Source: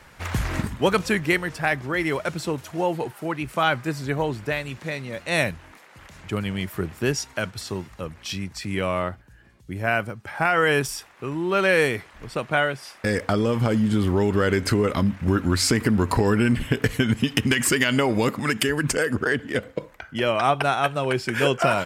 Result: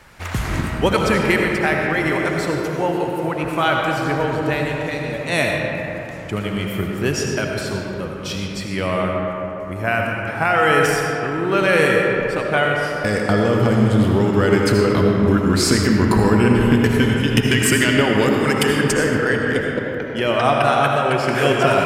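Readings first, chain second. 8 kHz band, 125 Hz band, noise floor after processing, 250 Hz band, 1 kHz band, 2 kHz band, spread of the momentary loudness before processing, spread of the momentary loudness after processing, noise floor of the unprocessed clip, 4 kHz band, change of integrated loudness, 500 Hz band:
+3.0 dB, +5.5 dB, -28 dBFS, +6.0 dB, +5.5 dB, +5.0 dB, 11 LU, 10 LU, -51 dBFS, +4.0 dB, +5.5 dB, +6.0 dB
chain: algorithmic reverb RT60 3.6 s, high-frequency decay 0.4×, pre-delay 40 ms, DRR -0.5 dB; trim +2 dB

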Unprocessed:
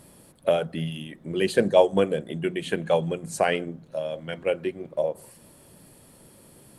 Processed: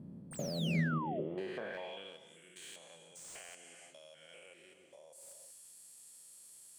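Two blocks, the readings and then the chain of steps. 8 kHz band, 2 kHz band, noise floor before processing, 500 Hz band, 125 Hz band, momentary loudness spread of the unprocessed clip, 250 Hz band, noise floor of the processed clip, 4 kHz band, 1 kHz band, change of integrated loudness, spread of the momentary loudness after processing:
-6.5 dB, -11.5 dB, -54 dBFS, -22.0 dB, -7.0 dB, 13 LU, -11.0 dB, -61 dBFS, -11.5 dB, -15.0 dB, -14.0 dB, 21 LU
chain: spectrogram pixelated in time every 200 ms; peaking EQ 85 Hz +9.5 dB 1.7 oct; gated-style reverb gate 400 ms flat, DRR 8.5 dB; compression 5:1, threshold -31 dBFS, peak gain reduction 11.5 dB; band-pass sweep 210 Hz -> 7.4 kHz, 0.82–2.36 s; painted sound fall, 0.31–1.21 s, 560–9100 Hz -47 dBFS; slew-rate limiter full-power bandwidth 11 Hz; trim +7 dB

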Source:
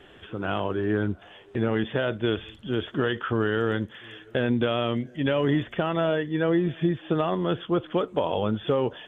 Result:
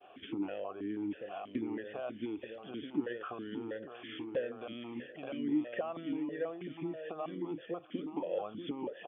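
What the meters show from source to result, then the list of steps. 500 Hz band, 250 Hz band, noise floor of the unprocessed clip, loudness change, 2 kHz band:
-13.5 dB, -10.5 dB, -51 dBFS, -13.0 dB, -16.5 dB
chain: expander -46 dBFS; compression 10:1, threshold -36 dBFS, peak gain reduction 17.5 dB; distance through air 170 m; delay 882 ms -6.5 dB; stepped vowel filter 6.2 Hz; trim +12.5 dB

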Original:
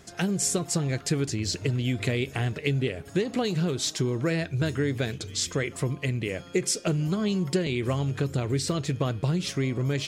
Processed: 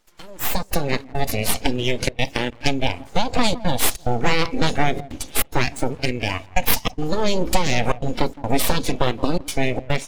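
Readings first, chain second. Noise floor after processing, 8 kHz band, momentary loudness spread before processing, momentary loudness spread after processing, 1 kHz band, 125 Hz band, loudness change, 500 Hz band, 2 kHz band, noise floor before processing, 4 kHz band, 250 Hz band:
-44 dBFS, +3.0 dB, 3 LU, 4 LU, +14.5 dB, -1.0 dB, +4.5 dB, +5.0 dB, +8.5 dB, -46 dBFS, +7.0 dB, +2.5 dB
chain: high-pass 240 Hz 6 dB/octave; trance gate "xxxxxx.xxx.xxx" 144 bpm -60 dB; on a send: tape echo 165 ms, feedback 48%, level -12.5 dB, low-pass 1.2 kHz; on the sum: level rider gain up to 14 dB; full-wave rectifier; spectral noise reduction 11 dB; dynamic bell 1.5 kHz, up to -5 dB, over -39 dBFS, Q 2.8; trim +1 dB

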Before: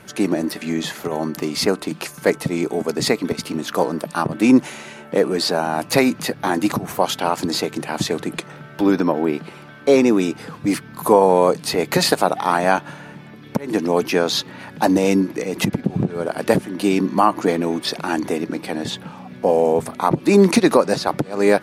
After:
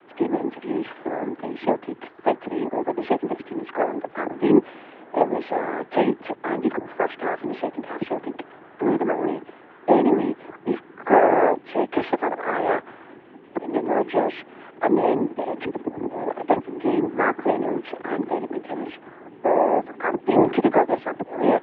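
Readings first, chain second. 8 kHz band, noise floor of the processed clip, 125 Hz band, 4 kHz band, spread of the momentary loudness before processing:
under -40 dB, -48 dBFS, -11.5 dB, -18.0 dB, 10 LU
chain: tilt shelf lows +6.5 dB, about 690 Hz; noise-vocoded speech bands 6; mistuned SSB -66 Hz 370–3000 Hz; trim -3 dB

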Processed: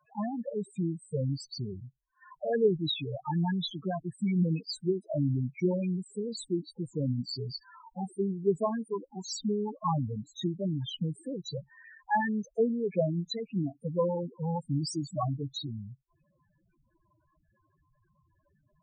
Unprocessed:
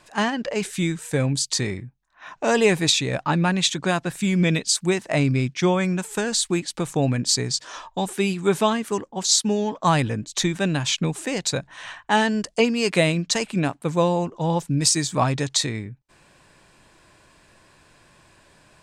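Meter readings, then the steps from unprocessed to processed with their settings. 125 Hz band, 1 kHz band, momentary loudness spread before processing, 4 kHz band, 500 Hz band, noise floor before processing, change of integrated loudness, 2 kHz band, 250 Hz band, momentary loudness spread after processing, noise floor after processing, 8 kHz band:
-7.5 dB, -10.5 dB, 7 LU, -15.0 dB, -8.0 dB, -59 dBFS, -10.0 dB, -17.5 dB, -8.0 dB, 10 LU, -74 dBFS, -23.5 dB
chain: Chebyshev shaper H 2 -17 dB, 3 -16 dB, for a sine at -5.5 dBFS; loudest bins only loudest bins 4; trim -1.5 dB

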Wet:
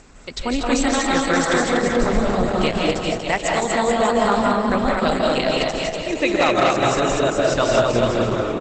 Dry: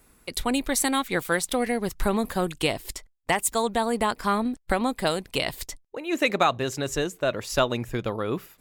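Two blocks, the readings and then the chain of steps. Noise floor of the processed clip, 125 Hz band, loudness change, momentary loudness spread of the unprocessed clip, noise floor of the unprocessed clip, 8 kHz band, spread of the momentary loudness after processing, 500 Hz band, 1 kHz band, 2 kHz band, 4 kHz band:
-30 dBFS, +7.0 dB, +7.0 dB, 7 LU, -61 dBFS, +2.0 dB, 5 LU, +8.5 dB, +7.0 dB, +6.5 dB, +5.5 dB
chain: upward compressor, threshold -38 dBFS; on a send: bouncing-ball echo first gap 240 ms, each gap 0.8×, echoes 5; on the sum: algorithmic reverb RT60 0.81 s, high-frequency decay 0.35×, pre-delay 120 ms, DRR -1 dB; wavefolder -9.5 dBFS; trim +2.5 dB; Opus 12 kbps 48 kHz

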